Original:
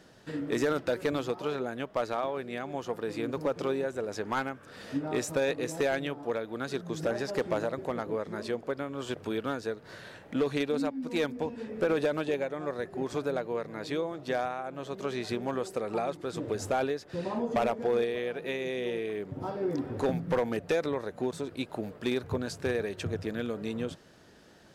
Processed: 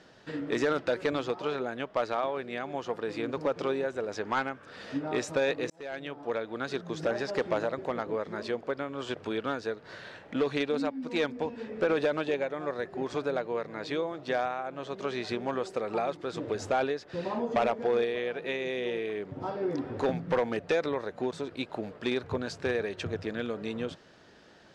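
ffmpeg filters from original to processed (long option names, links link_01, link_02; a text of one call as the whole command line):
ffmpeg -i in.wav -filter_complex "[0:a]asplit=2[link_01][link_02];[link_01]atrim=end=5.7,asetpts=PTS-STARTPTS,afade=type=out:start_time=5.696:duration=0.004:curve=hsin[link_03];[link_02]atrim=start=5.7,asetpts=PTS-STARTPTS,afade=type=in:duration=0.69[link_04];[link_03][link_04]concat=n=2:v=0:a=1,lowpass=5300,lowshelf=frequency=320:gain=-6,volume=2.5dB" out.wav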